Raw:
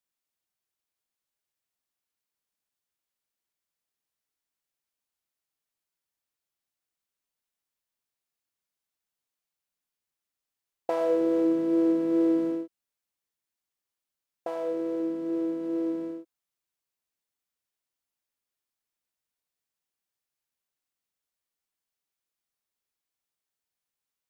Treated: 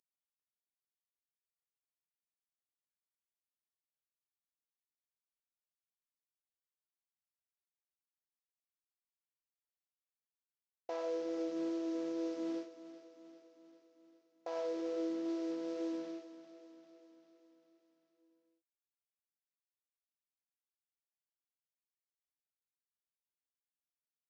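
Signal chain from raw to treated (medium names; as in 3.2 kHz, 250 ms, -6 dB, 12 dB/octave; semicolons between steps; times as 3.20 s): CVSD coder 32 kbps; high-pass 290 Hz 12 dB/octave; peak limiter -26.5 dBFS, peak gain reduction 10.5 dB; flange 0.44 Hz, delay 1 ms, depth 4.1 ms, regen -78%; on a send: feedback delay 396 ms, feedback 59%, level -13 dB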